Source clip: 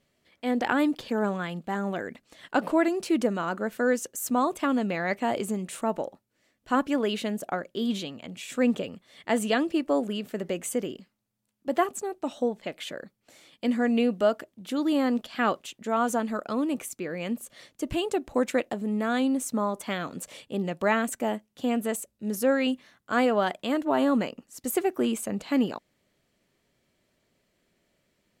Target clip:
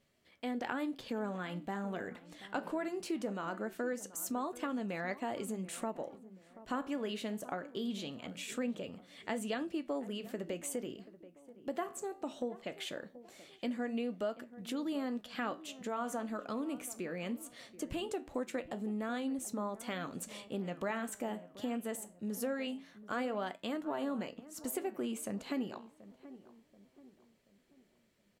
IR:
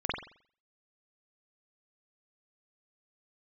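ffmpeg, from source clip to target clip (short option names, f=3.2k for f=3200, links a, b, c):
-filter_complex "[0:a]flanger=delay=9:depth=9.4:regen=-72:speed=0.21:shape=triangular,acompressor=threshold=-39dB:ratio=2.5,asplit=2[a][b];[b]adelay=732,lowpass=f=1.2k:p=1,volume=-16dB,asplit=2[c][d];[d]adelay=732,lowpass=f=1.2k:p=1,volume=0.45,asplit=2[e][f];[f]adelay=732,lowpass=f=1.2k:p=1,volume=0.45,asplit=2[g][h];[h]adelay=732,lowpass=f=1.2k:p=1,volume=0.45[i];[c][e][g][i]amix=inputs=4:normalize=0[j];[a][j]amix=inputs=2:normalize=0,volume=1dB"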